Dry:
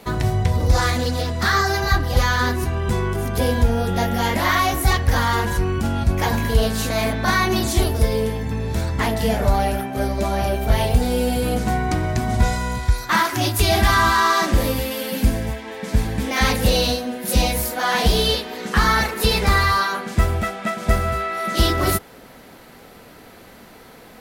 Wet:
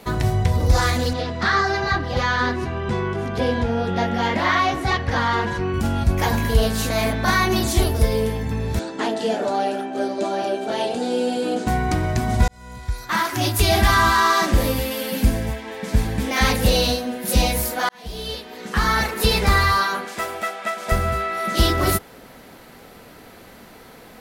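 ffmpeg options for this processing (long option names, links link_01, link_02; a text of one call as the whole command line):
ffmpeg -i in.wav -filter_complex "[0:a]asettb=1/sr,asplit=3[link_01][link_02][link_03];[link_01]atrim=end=1.134[link_04];[link_02]atrim=start=1.13:end=5.74,asetpts=PTS-STARTPTS,afade=type=in:duration=0.004:curve=qsin,afade=type=out:start_time=4.606:duration=0.004:curve=qsin,highpass=110,lowpass=4200[link_05];[link_03]atrim=start=5.736[link_06];[link_04][link_05]acrossfade=duration=0.004:curve1=hsin:curve2=qsin[link_07];[link_07][link_06]acrossfade=duration=0.004:curve1=qsin:curve2=hsin,asettb=1/sr,asplit=3[link_08][link_09][link_10];[link_08]atrim=end=8.794[link_11];[link_09]atrim=start=8.79:end=11.67,asetpts=PTS-STARTPTS,afade=type=in:duration=0.004:curve=qsin,afade=type=out:start_time=2.876:duration=0.004:curve=qsin,highpass=frequency=240:width=0.5412,highpass=frequency=240:width=1.3066,equalizer=frequency=330:width_type=q:width=4:gain=6,equalizer=frequency=1100:width_type=q:width=4:gain=-5,equalizer=frequency=2100:width_type=q:width=4:gain=-9,equalizer=frequency=5500:width_type=q:width=4:gain=-5,lowpass=frequency=8000:width=0.5412,lowpass=frequency=8000:width=1.3066[link_12];[link_10]atrim=start=11.666[link_13];[link_11][link_12]acrossfade=duration=0.004:curve1=hsin:curve2=qsin[link_14];[link_14][link_13]acrossfade=duration=0.004:curve1=qsin:curve2=hsin,asettb=1/sr,asplit=3[link_15][link_16][link_17];[link_15]atrim=end=20.054[link_18];[link_16]atrim=start=20.05:end=20.92,asetpts=PTS-STARTPTS,afade=type=in:duration=0.004:curve=qsin,afade=type=out:start_time=0.866:duration=0.004:curve=qsin,highpass=460[link_19];[link_17]atrim=start=20.916[link_20];[link_18][link_19]acrossfade=duration=0.004:curve1=hsin:curve2=qsin[link_21];[link_21][link_20]acrossfade=duration=0.004:curve1=qsin:curve2=hsin,asplit=3[link_22][link_23][link_24];[link_22]atrim=end=12.48,asetpts=PTS-STARTPTS,afade=type=out:start_time=12.476:duration=0.004:curve=hsin[link_25];[link_23]atrim=start=12.48:end=17.89,asetpts=PTS-STARTPTS,afade=type=in:duration=1.04,afade=type=out:start_time=5.406:duration=0.004:curve=hsin[link_26];[link_24]atrim=start=17.89,asetpts=PTS-STARTPTS,afade=type=in:duration=1.31[link_27];[link_25][link_26][link_27]concat=n=3:v=0:a=1" out.wav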